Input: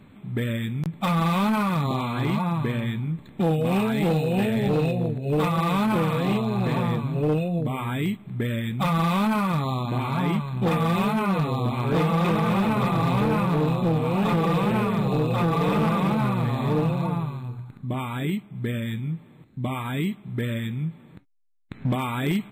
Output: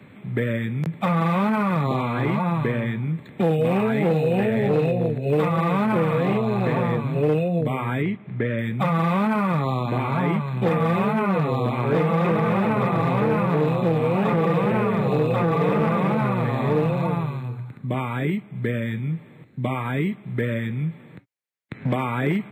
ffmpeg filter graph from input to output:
-filter_complex "[0:a]asettb=1/sr,asplit=3[a][b][c];[a]atrim=end=8.024[d];[b]atrim=start=8.02:end=8.59,asetpts=PTS-STARTPTS,afade=t=in:d=0.004:c=qsin,afade=t=out:st=0.566:d=0.004:c=qsin,lowpass=f=7k:w=0.5412,lowpass=f=7k:w=1.3066,bass=f=250:g=-2,treble=f=4k:g=-9[e];[c]atrim=start=8.586[f];[d][e]acrossfade=d=0.004:c1=hsin:c2=qsin[g];[g][f]acrossfade=d=0.004:c1=qsin:c2=hsin,equalizer=f=125:t=o:w=1:g=5,equalizer=f=500:t=o:w=1:g=7,equalizer=f=2k:t=o:w=1:g=9,acrossover=split=140|390|1800[h][i][j][k];[h]acompressor=threshold=-31dB:ratio=4[l];[i]acompressor=threshold=-22dB:ratio=4[m];[j]acompressor=threshold=-22dB:ratio=4[n];[k]acompressor=threshold=-41dB:ratio=4[o];[l][m][n][o]amix=inputs=4:normalize=0,highpass=87"

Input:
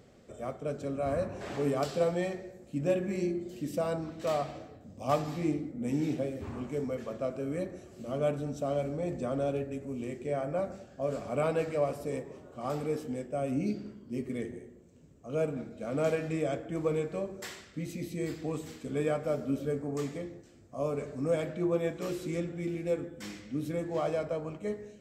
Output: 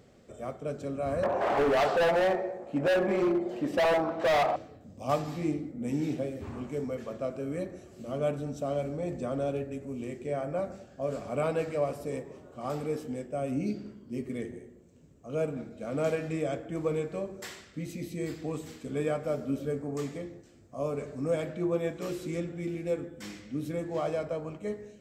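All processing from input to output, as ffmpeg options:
-filter_complex "[0:a]asettb=1/sr,asplit=3[a][b][c];[a]atrim=end=1.234[d];[b]atrim=start=1.23:end=4.56,asetpts=PTS-STARTPTS,afade=t=in:d=0.004:c=qsin,afade=t=out:st=3.326:d=0.004:c=qsin,equalizer=f=820:w=0.72:g=14,asplit=2[e][f];[f]highpass=f=720:p=1,volume=14dB,asoftclip=type=tanh:threshold=-7dB[g];[e][g]amix=inputs=2:normalize=0,lowpass=f=1.2k:p=1,volume=-6dB,volume=22.5dB,asoftclip=hard,volume=-22.5dB[h];[c]atrim=start=4.556[i];[d][h]acrossfade=d=0.004:c1=hsin:c2=qsin[j];[j][i]acrossfade=d=0.004:c1=qsin:c2=hsin"

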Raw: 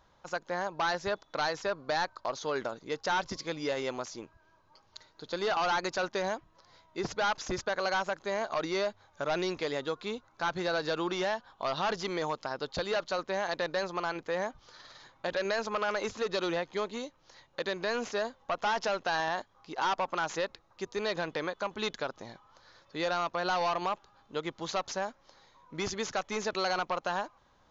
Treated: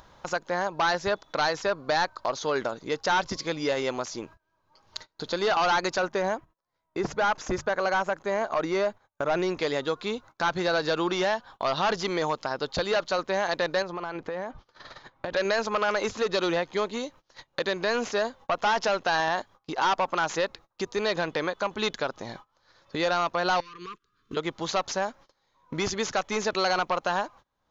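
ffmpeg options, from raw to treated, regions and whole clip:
-filter_complex "[0:a]asettb=1/sr,asplit=3[a][b][c];[a]atrim=end=5.994[d];[b]atrim=start=5.99:end=9.59,asetpts=PTS-STARTPTS,afade=t=in:d=0.004:c=qsin,afade=t=out:st=3.596:d=0.004:c=qsin,bandreject=f=50:t=h:w=6,bandreject=f=100:t=h:w=6,bandreject=f=150:t=h:w=6,agate=range=-10dB:threshold=-58dB:ratio=16:release=100:detection=peak,equalizer=f=4.3k:w=0.97:g=-8.5[e];[c]atrim=start=9.586[f];[d][e]acrossfade=d=0.004:c1=hsin:c2=qsin[g];[g][f]acrossfade=d=0.004:c1=qsin:c2=hsin,asettb=1/sr,asplit=3[h][i][j];[h]atrim=end=13.824[k];[i]atrim=start=13.82:end=15.34,asetpts=PTS-STARTPTS,afade=t=in:d=0.004:c=qsin,afade=t=out:st=1.516:d=0.004:c=qsin,lowpass=f=2k:p=1,acompressor=threshold=-36dB:ratio=5:attack=3.2:release=140:knee=1:detection=peak[l];[j]atrim=start=15.336[m];[k][l]acrossfade=d=0.004:c1=hsin:c2=qsin[n];[n][m]acrossfade=d=0.004:c1=qsin:c2=hsin,asettb=1/sr,asplit=3[o][p][q];[o]atrim=end=23.604[r];[p]atrim=start=23.6:end=24.37,asetpts=PTS-STARTPTS,afade=t=in:d=0.004:c=qsin,afade=t=out:st=0.766:d=0.004:c=qsin,acompressor=threshold=-43dB:ratio=16:attack=3.2:release=140:knee=1:detection=peak,asuperstop=centerf=710:order=12:qfactor=1.2[s];[q]atrim=start=24.366[t];[r][s]acrossfade=d=0.004:c1=hsin:c2=qsin[u];[u][t]acrossfade=d=0.004:c1=qsin:c2=hsin,agate=range=-29dB:threshold=-53dB:ratio=16:detection=peak,acompressor=mode=upward:threshold=-34dB:ratio=2.5,volume=5.5dB"

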